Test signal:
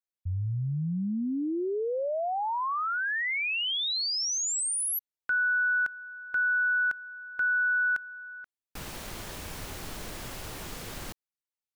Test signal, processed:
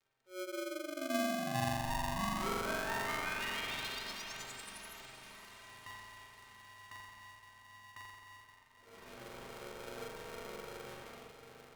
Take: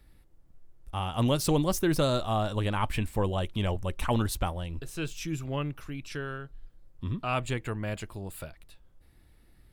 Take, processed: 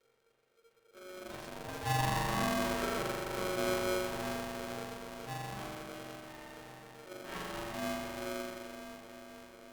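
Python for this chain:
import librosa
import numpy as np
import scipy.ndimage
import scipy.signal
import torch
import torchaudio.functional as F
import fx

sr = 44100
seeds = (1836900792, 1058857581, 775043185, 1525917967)

y = fx.auto_swell(x, sr, attack_ms=315.0)
y = fx.dmg_crackle(y, sr, seeds[0], per_s=55.0, level_db=-41.0)
y = fx.lowpass(y, sr, hz=2100.0, slope=6)
y = fx.stiff_resonator(y, sr, f0_hz=100.0, decay_s=0.2, stiffness=0.03)
y = fx.echo_diffused(y, sr, ms=508, feedback_pct=65, wet_db=-10)
y = fx.rev_spring(y, sr, rt60_s=2.2, pass_ms=(42,), chirp_ms=65, drr_db=-6.0)
y = y * np.sign(np.sin(2.0 * np.pi * 460.0 * np.arange(len(y)) / sr))
y = y * 10.0 ** (-6.5 / 20.0)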